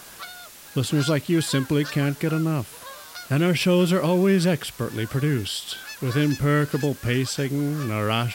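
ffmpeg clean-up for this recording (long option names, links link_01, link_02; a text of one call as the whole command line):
ffmpeg -i in.wav -af "afftdn=noise_reduction=25:noise_floor=-43" out.wav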